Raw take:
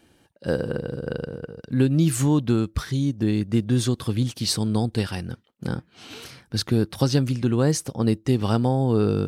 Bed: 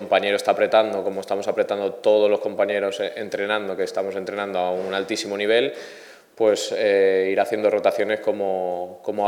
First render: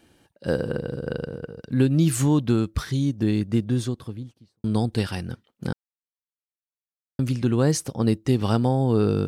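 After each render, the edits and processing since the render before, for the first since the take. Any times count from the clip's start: 3.32–4.64 studio fade out; 5.73–7.19 mute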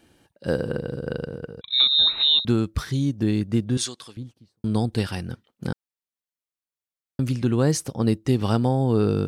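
1.61–2.45 inverted band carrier 3900 Hz; 3.77–4.17 weighting filter ITU-R 468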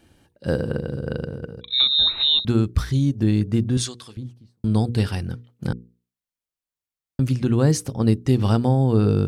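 low shelf 140 Hz +9.5 dB; notches 60/120/180/240/300/360/420/480 Hz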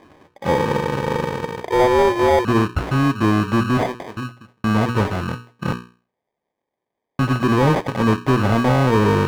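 sample-and-hold 32×; overdrive pedal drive 23 dB, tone 1300 Hz, clips at -5 dBFS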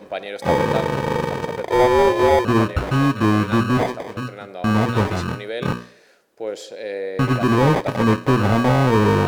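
add bed -10 dB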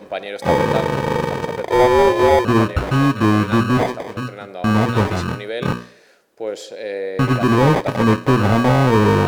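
gain +2 dB

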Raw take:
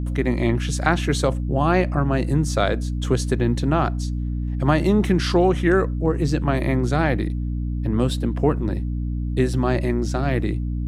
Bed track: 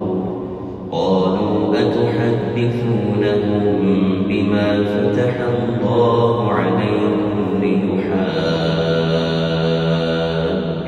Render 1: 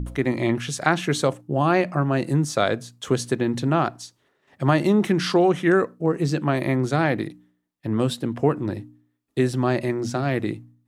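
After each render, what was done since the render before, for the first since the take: de-hum 60 Hz, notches 5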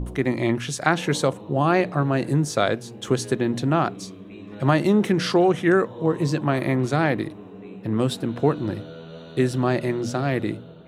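add bed track -23 dB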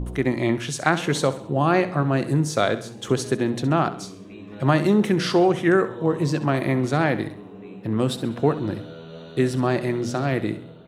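feedback echo 66 ms, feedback 46%, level -14 dB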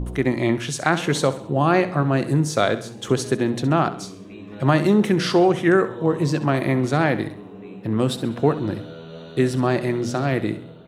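gain +1.5 dB; limiter -3 dBFS, peak gain reduction 2.5 dB

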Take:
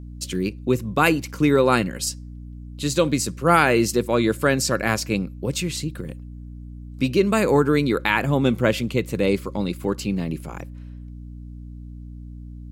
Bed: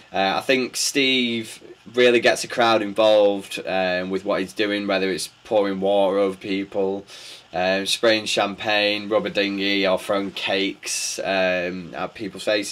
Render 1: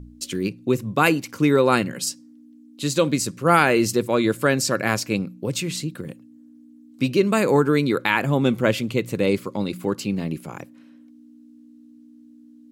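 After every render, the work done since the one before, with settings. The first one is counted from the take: de-hum 60 Hz, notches 3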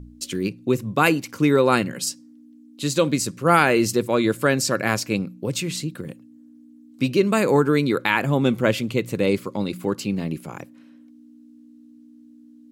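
nothing audible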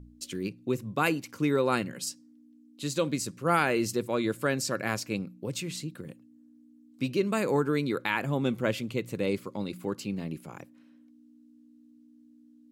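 gain -8.5 dB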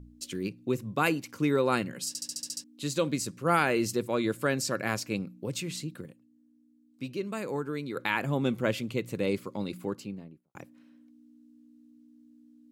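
2.08 stutter in place 0.07 s, 8 plays; 6.06–7.96 gain -7 dB; 9.72–10.55 studio fade out

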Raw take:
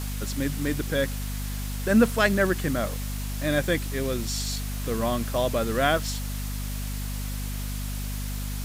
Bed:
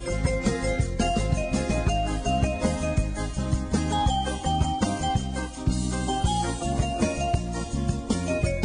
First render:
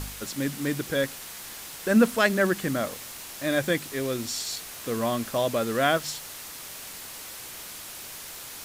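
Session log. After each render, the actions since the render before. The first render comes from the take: de-hum 50 Hz, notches 5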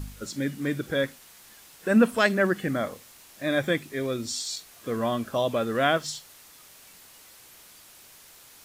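noise print and reduce 11 dB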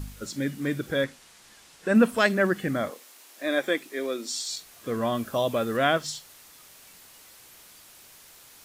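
1.04–1.95 LPF 8900 Hz; 2.9–4.48 HPF 270 Hz 24 dB/oct; 5.15–5.77 high shelf 11000 Hz +8 dB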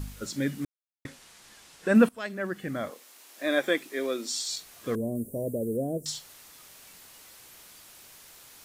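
0.65–1.05 mute; 2.09–3.43 fade in, from -20 dB; 4.95–6.06 elliptic band-stop 480–8900 Hz, stop band 50 dB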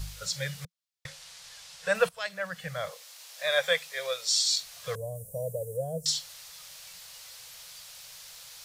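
elliptic band-stop 170–490 Hz, stop band 40 dB; bell 4600 Hz +8.5 dB 1.5 oct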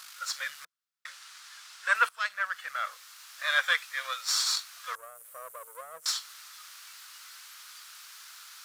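half-wave gain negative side -7 dB; resonant high-pass 1300 Hz, resonance Q 3.6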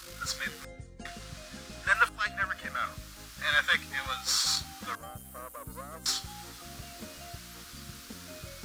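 add bed -21.5 dB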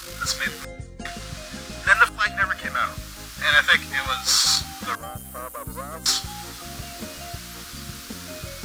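gain +9 dB; limiter -3 dBFS, peak gain reduction 1.5 dB

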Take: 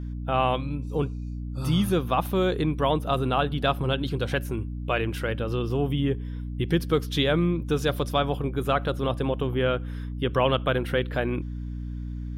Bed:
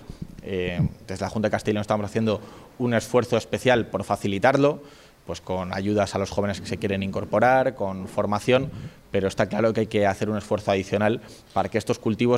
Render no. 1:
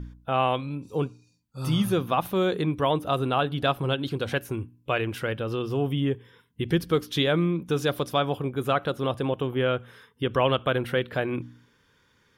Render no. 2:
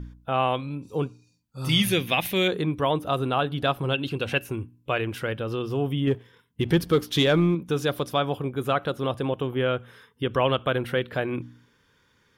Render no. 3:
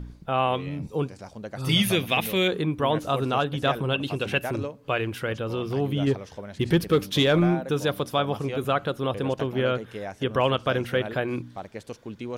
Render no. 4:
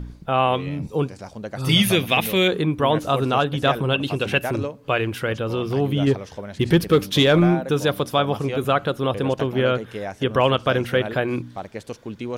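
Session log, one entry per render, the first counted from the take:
de-hum 60 Hz, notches 5
1.69–2.48 resonant high shelf 1600 Hz +8.5 dB, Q 3; 3.94–4.52 small resonant body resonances 2700 Hz, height 15 dB, ringing for 20 ms; 6.07–7.55 sample leveller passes 1
add bed -14 dB
gain +4.5 dB

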